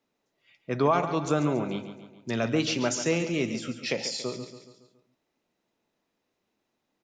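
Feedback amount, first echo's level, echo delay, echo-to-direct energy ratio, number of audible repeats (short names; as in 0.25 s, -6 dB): 51%, -11.0 dB, 0.14 s, -9.5 dB, 5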